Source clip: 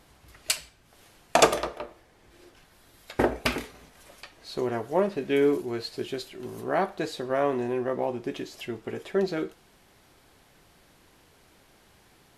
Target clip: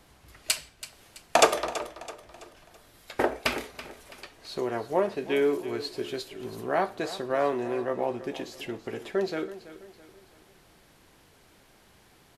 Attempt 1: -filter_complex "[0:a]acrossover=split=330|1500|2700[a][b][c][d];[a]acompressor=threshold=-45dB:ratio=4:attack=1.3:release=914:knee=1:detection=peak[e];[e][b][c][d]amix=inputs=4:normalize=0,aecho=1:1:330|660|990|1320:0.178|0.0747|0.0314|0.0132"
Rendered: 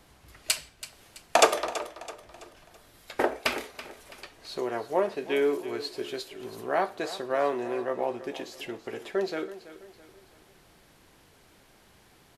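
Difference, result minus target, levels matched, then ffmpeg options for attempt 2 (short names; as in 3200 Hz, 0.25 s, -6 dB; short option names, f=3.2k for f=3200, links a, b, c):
compressor: peak gain reduction +7 dB
-filter_complex "[0:a]acrossover=split=330|1500|2700[a][b][c][d];[a]acompressor=threshold=-35.5dB:ratio=4:attack=1.3:release=914:knee=1:detection=peak[e];[e][b][c][d]amix=inputs=4:normalize=0,aecho=1:1:330|660|990|1320:0.178|0.0747|0.0314|0.0132"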